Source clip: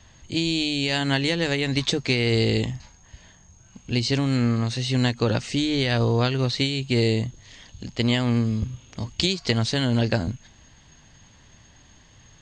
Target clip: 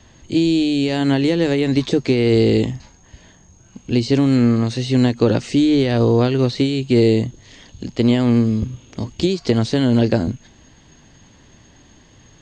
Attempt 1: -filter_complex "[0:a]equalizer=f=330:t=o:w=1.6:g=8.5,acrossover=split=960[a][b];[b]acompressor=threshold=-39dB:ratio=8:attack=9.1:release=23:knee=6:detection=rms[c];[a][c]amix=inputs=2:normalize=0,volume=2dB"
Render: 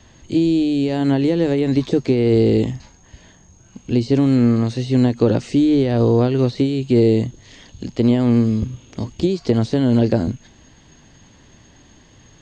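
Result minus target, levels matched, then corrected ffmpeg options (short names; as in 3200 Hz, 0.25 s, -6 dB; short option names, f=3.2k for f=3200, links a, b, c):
compressor: peak gain reduction +8 dB
-filter_complex "[0:a]equalizer=f=330:t=o:w=1.6:g=8.5,acrossover=split=960[a][b];[b]acompressor=threshold=-30dB:ratio=8:attack=9.1:release=23:knee=6:detection=rms[c];[a][c]amix=inputs=2:normalize=0,volume=2dB"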